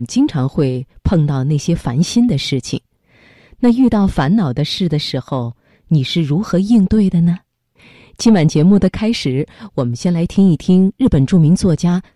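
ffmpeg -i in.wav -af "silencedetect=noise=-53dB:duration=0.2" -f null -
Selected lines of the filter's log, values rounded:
silence_start: 7.42
silence_end: 7.75 | silence_duration: 0.33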